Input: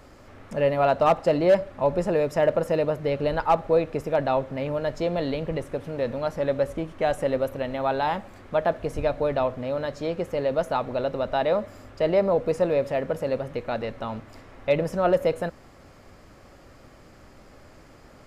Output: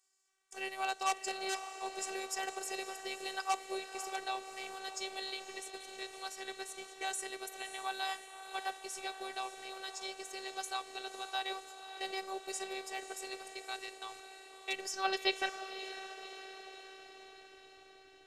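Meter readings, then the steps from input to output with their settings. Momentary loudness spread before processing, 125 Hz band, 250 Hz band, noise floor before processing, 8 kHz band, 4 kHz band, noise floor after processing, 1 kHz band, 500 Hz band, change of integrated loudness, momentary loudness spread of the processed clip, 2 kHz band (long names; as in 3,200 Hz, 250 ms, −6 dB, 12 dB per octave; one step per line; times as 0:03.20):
9 LU, below −40 dB, −21.0 dB, −50 dBFS, can't be measured, +1.0 dB, −59 dBFS, −10.5 dB, −22.5 dB, −14.5 dB, 13 LU, −5.0 dB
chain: noise gate −36 dBFS, range −21 dB
transient designer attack +1 dB, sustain −3 dB
band-pass filter sweep 7,800 Hz → 230 Hz, 0:14.74–0:17.29
feedback delay with all-pass diffusion 562 ms, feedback 62%, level −10.5 dB
phases set to zero 384 Hz
level +15.5 dB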